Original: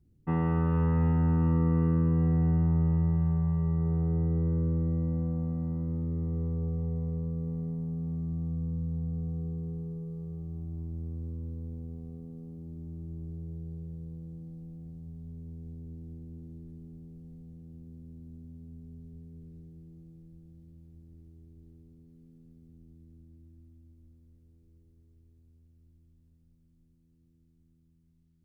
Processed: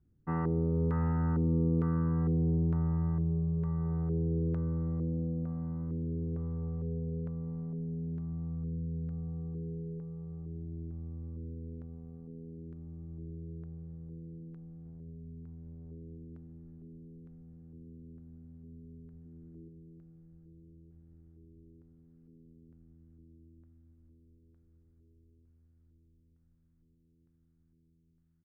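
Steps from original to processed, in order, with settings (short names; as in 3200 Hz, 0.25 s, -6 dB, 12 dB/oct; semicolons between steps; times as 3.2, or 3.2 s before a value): 14.85–16.17 self-modulated delay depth 0.24 ms; 19.25–19.68 bell 300 Hz +14.5 dB 0.31 oct; echo 1.2 s -21 dB; LFO low-pass square 1.1 Hz 420–1500 Hz; gain -5 dB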